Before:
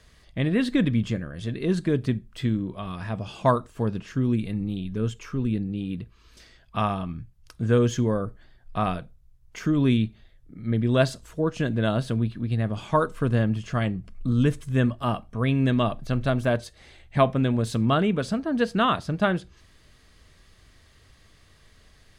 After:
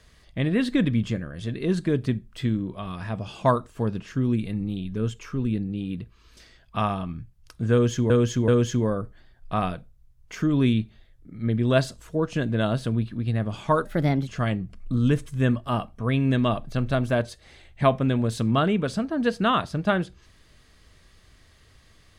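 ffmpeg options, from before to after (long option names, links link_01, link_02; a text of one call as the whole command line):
ffmpeg -i in.wav -filter_complex "[0:a]asplit=5[link_01][link_02][link_03][link_04][link_05];[link_01]atrim=end=8.102[link_06];[link_02]atrim=start=7.718:end=8.102[link_07];[link_03]atrim=start=7.718:end=13.094[link_08];[link_04]atrim=start=13.09:end=13.62,asetpts=PTS-STARTPTS,asetrate=55125,aresample=44100,atrim=end_sample=18698,asetpts=PTS-STARTPTS[link_09];[link_05]atrim=start=13.616[link_10];[link_06][link_07]acrossfade=duration=0.004:curve1=hsin:curve2=hsin[link_11];[link_11][link_08]acrossfade=duration=0.004:curve1=hsin:curve2=hsin[link_12];[link_12][link_09]acrossfade=duration=0.004:curve1=hsin:curve2=hsin[link_13];[link_13][link_10]acrossfade=duration=0.004:curve1=hsin:curve2=hsin" out.wav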